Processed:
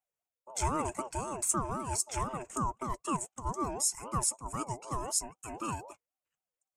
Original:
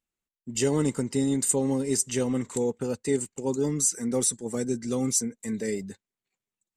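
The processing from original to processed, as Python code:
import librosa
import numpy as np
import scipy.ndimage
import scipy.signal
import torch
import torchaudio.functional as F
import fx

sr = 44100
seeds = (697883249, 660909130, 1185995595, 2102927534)

y = fx.fixed_phaser(x, sr, hz=990.0, stages=6)
y = fx.ring_lfo(y, sr, carrier_hz=630.0, swing_pct=25, hz=3.9)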